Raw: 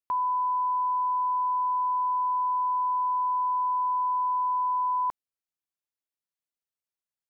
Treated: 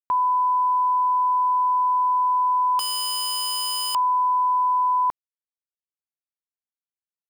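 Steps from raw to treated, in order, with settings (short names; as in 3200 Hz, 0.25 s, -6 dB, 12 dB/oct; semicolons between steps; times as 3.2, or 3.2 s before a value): bit-crush 11-bit; 2.79–3.95 wrapped overs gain 27.5 dB; gain +6 dB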